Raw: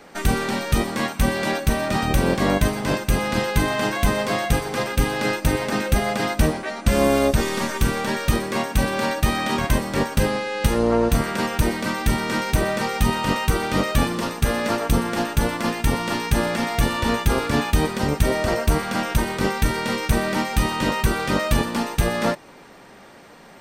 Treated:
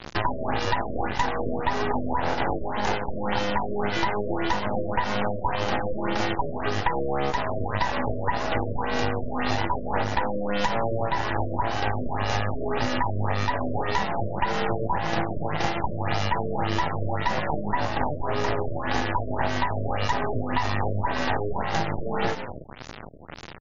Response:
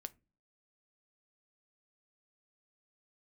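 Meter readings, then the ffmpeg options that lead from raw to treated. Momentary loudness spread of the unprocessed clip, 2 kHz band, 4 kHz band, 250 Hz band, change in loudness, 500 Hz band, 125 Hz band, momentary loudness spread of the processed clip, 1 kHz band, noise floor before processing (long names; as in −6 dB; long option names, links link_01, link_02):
3 LU, −4.5 dB, −6.0 dB, −7.5 dB, −5.0 dB, −4.5 dB, −6.5 dB, 2 LU, 0.0 dB, −45 dBFS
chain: -filter_complex "[0:a]afftfilt=real='real(if(between(b,1,1008),(2*floor((b-1)/48)+1)*48-b,b),0)':imag='imag(if(between(b,1,1008),(2*floor((b-1)/48)+1)*48-b,b),0)*if(between(b,1,1008),-1,1)':win_size=2048:overlap=0.75,asplit=4[link_01][link_02][link_03][link_04];[link_02]adelay=115,afreqshift=79,volume=-15.5dB[link_05];[link_03]adelay=230,afreqshift=158,volume=-25.4dB[link_06];[link_04]adelay=345,afreqshift=237,volume=-35.3dB[link_07];[link_01][link_05][link_06][link_07]amix=inputs=4:normalize=0,asplit=2[link_08][link_09];[link_09]asoftclip=type=tanh:threshold=-18dB,volume=-4.5dB[link_10];[link_08][link_10]amix=inputs=2:normalize=0,acrusher=bits=5:mix=0:aa=0.000001,equalizer=frequency=97:width_type=o:width=2.9:gain=8,aeval=exprs='max(val(0),0)':channel_layout=same,acompressor=threshold=-24dB:ratio=20,afftfilt=real='re*lt(b*sr/1024,640*pow(7200/640,0.5+0.5*sin(2*PI*1.8*pts/sr)))':imag='im*lt(b*sr/1024,640*pow(7200/640,0.5+0.5*sin(2*PI*1.8*pts/sr)))':win_size=1024:overlap=0.75,volume=5.5dB"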